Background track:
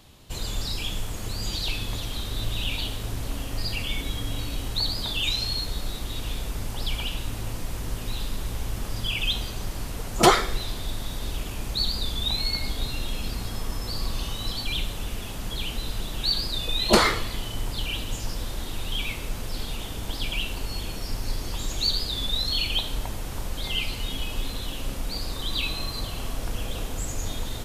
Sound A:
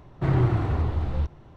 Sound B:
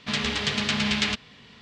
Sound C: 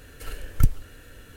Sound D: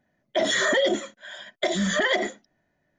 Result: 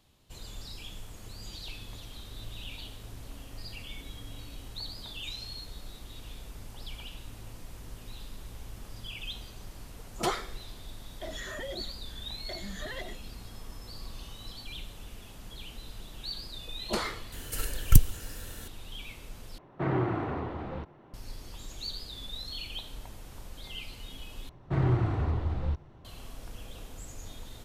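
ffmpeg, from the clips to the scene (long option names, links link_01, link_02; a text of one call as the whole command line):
ffmpeg -i bed.wav -i cue0.wav -i cue1.wav -i cue2.wav -i cue3.wav -filter_complex "[1:a]asplit=2[link_01][link_02];[0:a]volume=-13.5dB[link_03];[3:a]bass=frequency=250:gain=1,treble=frequency=4000:gain=11[link_04];[link_01]acrossover=split=170 3100:gain=0.126 1 0.224[link_05][link_06][link_07];[link_05][link_06][link_07]amix=inputs=3:normalize=0[link_08];[link_03]asplit=3[link_09][link_10][link_11];[link_09]atrim=end=19.584[link_12];[link_08]atrim=end=1.56,asetpts=PTS-STARTPTS,volume=-1dB[link_13];[link_10]atrim=start=21.136:end=24.494[link_14];[link_02]atrim=end=1.56,asetpts=PTS-STARTPTS,volume=-4.5dB[link_15];[link_11]atrim=start=26.046[link_16];[4:a]atrim=end=2.98,asetpts=PTS-STARTPTS,volume=-18dB,afade=type=in:duration=0.004:curve=hsin,afade=type=out:start_time=2.976:duration=0.004:curve=hsin,adelay=10860[link_17];[link_04]atrim=end=1.36,asetpts=PTS-STARTPTS,afade=type=in:duration=0.004:curve=hsin,afade=type=out:start_time=1.356:duration=0.004:curve=hsin,adelay=763812S[link_18];[link_12][link_13]acrossfade=duration=0.004:curve1=hsin:curve2=hsin[link_19];[link_19][link_14]acrossfade=duration=0.004:curve1=hsin:curve2=hsin[link_20];[link_20][link_15]acrossfade=duration=0.004:curve1=hsin:curve2=hsin[link_21];[link_21][link_16]acrossfade=duration=0.004:curve1=hsin:curve2=hsin[link_22];[link_22][link_17][link_18]amix=inputs=3:normalize=0" out.wav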